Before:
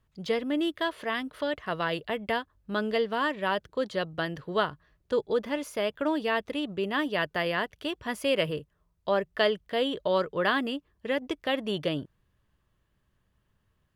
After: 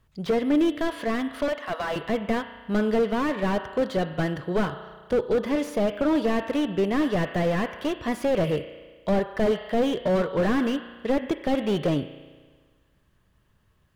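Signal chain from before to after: 1.48–1.96 s: inverse Chebyshev high-pass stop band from 270 Hz, stop band 40 dB; spring tank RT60 1.5 s, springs 34 ms, chirp 40 ms, DRR 15.5 dB; slew-rate limiter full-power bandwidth 24 Hz; trim +7 dB

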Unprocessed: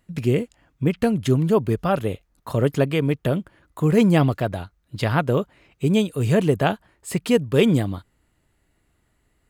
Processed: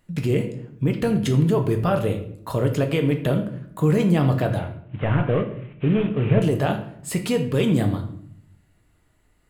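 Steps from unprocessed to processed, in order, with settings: 4.59–6.42 s: CVSD coder 16 kbps; peak limiter -14.5 dBFS, peak gain reduction 9 dB; simulated room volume 120 m³, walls mixed, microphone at 0.51 m; trim +1 dB

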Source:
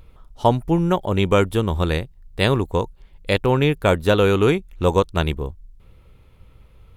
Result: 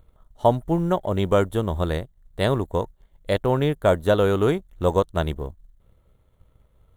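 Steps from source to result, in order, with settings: companding laws mixed up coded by A; graphic EQ with 31 bands 630 Hz +7 dB, 2.5 kHz -11 dB, 5 kHz -12 dB; trim -3.5 dB

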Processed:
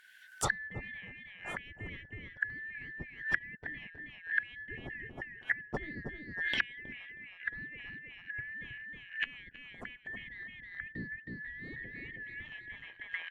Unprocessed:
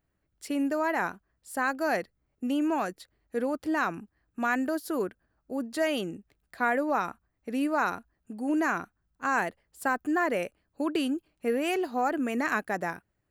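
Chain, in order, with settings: four frequency bands reordered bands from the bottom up 4123; recorder AGC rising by 20 dB/s; on a send: feedback delay 318 ms, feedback 21%, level -3 dB; on the sum: low-pass that closes with the level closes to 370 Hz, closed at -26.5 dBFS; tape noise reduction on one side only encoder only; trim +8.5 dB

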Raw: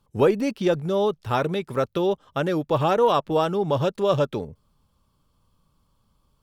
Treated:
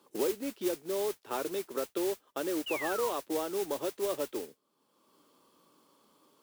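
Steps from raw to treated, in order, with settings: painted sound fall, 2.66–3.11 s, 910–3000 Hz -24 dBFS; ladder high-pass 280 Hz, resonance 50%; modulation noise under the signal 11 dB; three bands compressed up and down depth 70%; trim -6 dB

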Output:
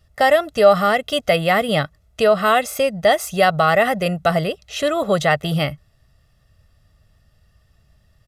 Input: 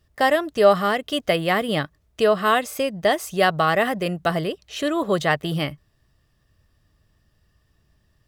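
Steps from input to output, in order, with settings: comb 1.5 ms, depth 55%; in parallel at +0.5 dB: peak limiter -12.5 dBFS, peak gain reduction 11.5 dB; on the sum: resampled via 32 kHz; trim -2.5 dB

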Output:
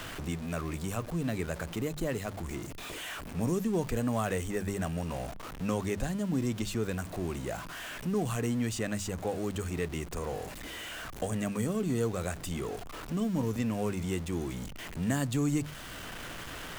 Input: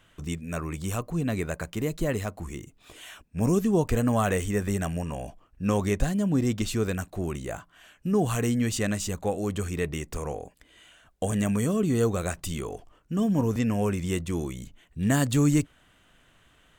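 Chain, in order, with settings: jump at every zero crossing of -33.5 dBFS; hum notches 50/100/150/200 Hz; three bands compressed up and down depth 40%; trim -6.5 dB

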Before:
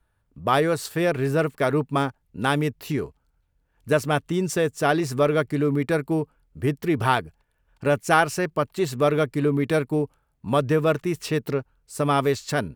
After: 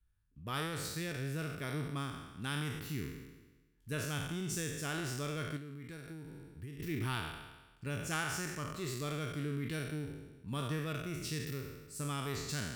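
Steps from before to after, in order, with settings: spectral sustain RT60 1.18 s; amplifier tone stack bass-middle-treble 6-0-2; 5.56–6.80 s: compression 12:1, threshold -46 dBFS, peak gain reduction 11.5 dB; trim +3 dB

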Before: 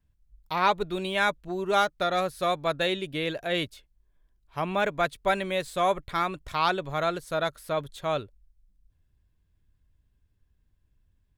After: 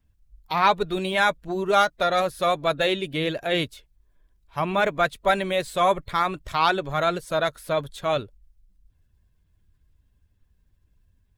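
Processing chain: coarse spectral quantiser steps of 15 dB; trim +4.5 dB

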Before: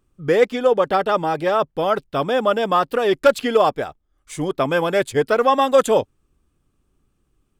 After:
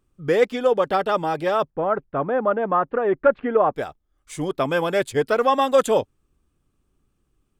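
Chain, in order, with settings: 1.70–3.76 s: low-pass 1.8 kHz 24 dB/octave; trim -2.5 dB

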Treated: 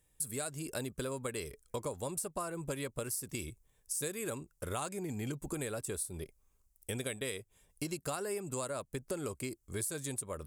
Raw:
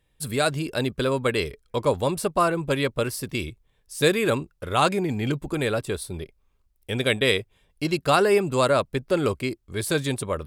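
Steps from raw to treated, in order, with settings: resonant high shelf 5.3 kHz +11.5 dB, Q 1.5; compression 10:1, threshold -29 dBFS, peak gain reduction 16 dB; trim -5.5 dB

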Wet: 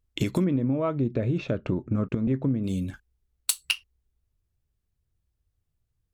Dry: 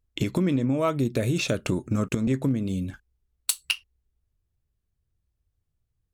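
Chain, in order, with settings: 0.44–2.64 s: tape spacing loss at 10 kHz 38 dB

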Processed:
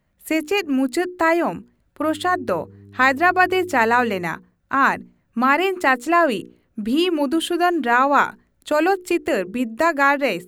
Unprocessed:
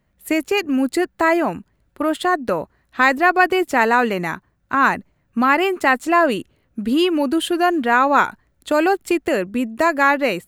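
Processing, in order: hum notches 60/120/180/240/300/360/420/480 Hz; 2.02–4.23 s: mains buzz 100 Hz, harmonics 4, -43 dBFS -5 dB/octave; trim -1 dB

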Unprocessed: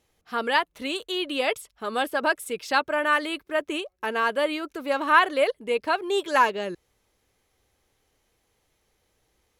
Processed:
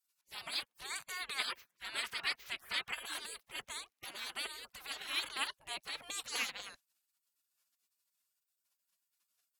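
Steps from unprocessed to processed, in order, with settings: spectral gate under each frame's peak -25 dB weak; 0.90–2.95 s: peaking EQ 1.8 kHz +8.5 dB 1.6 oct; trim +1 dB

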